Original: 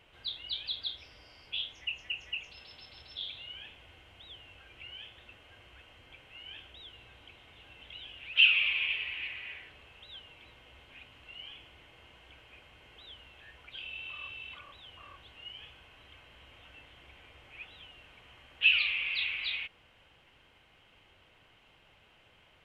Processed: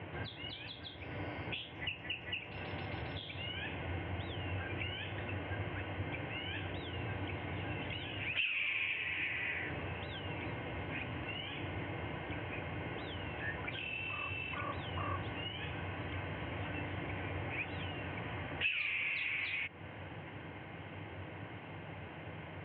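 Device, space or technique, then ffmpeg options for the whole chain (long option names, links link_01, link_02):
bass amplifier: -af "acompressor=threshold=-48dB:ratio=3,highpass=frequency=86:width=0.5412,highpass=frequency=86:width=1.3066,equalizer=frequency=95:width_type=q:width=4:gain=10,equalizer=frequency=160:width_type=q:width=4:gain=9,equalizer=frequency=300:width_type=q:width=4:gain=7,equalizer=frequency=1300:width_type=q:width=4:gain=-7,lowpass=frequency=2100:width=0.5412,lowpass=frequency=2100:width=1.3066,volume=17dB"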